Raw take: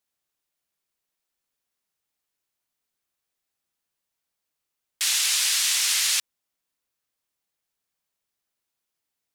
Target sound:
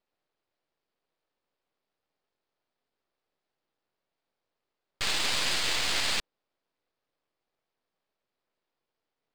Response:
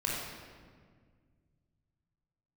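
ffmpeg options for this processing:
-af "equalizer=frequency=480:width_type=o:width=2.6:gain=14.5,aresample=11025,aresample=44100,aeval=exprs='max(val(0),0)':channel_layout=same"

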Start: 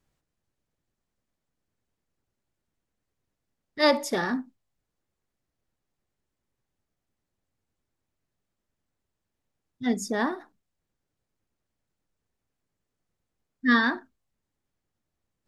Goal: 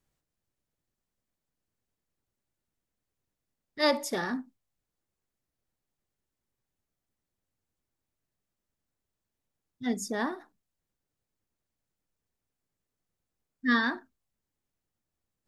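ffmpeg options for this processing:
ffmpeg -i in.wav -af "highshelf=frequency=6800:gain=5.5,volume=-4.5dB" out.wav

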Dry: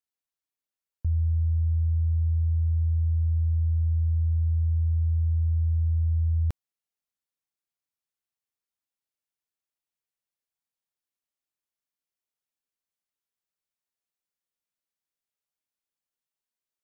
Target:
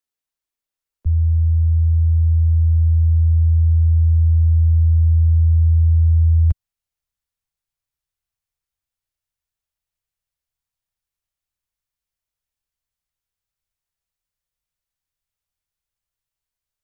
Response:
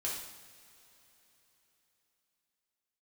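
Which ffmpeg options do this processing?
-filter_complex "[0:a]asubboost=boost=10.5:cutoff=81,acrossover=split=110|140|160[link_01][link_02][link_03][link_04];[link_01]alimiter=limit=-18.5dB:level=0:latency=1:release=17[link_05];[link_04]asoftclip=type=tanh:threshold=-33dB[link_06];[link_05][link_02][link_03][link_06]amix=inputs=4:normalize=0,volume=3.5dB"

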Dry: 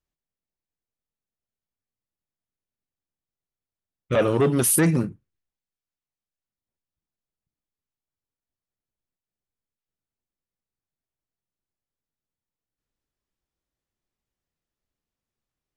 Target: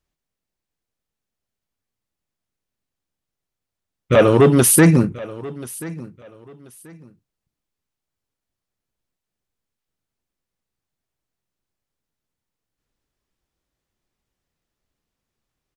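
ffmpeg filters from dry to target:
ffmpeg -i in.wav -af "highshelf=frequency=10000:gain=-4.5,aecho=1:1:1034|2068:0.112|0.0269,volume=8dB" out.wav

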